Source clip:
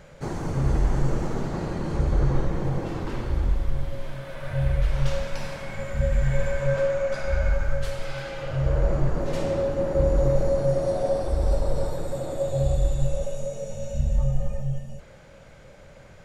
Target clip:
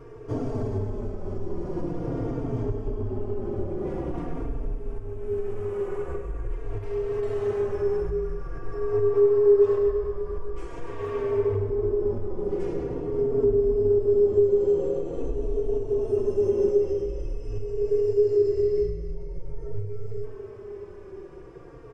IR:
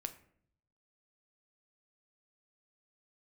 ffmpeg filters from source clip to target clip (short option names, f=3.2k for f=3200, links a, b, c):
-filter_complex "[0:a]asetrate=32667,aresample=44100,acompressor=threshold=-28dB:ratio=6,equalizer=f=400:t=o:w=0.67:g=11,equalizer=f=1.6k:t=o:w=0.67:g=-3,equalizer=f=4k:t=o:w=0.67:g=-10,aecho=1:1:104:0.282,asplit=2[a][b];[1:a]atrim=start_sample=2205,lowpass=2.7k[c];[b][c]afir=irnorm=-1:irlink=0,volume=-2.5dB[d];[a][d]amix=inputs=2:normalize=0,asplit=2[e][f];[f]adelay=3.8,afreqshift=-0.46[g];[e][g]amix=inputs=2:normalize=1"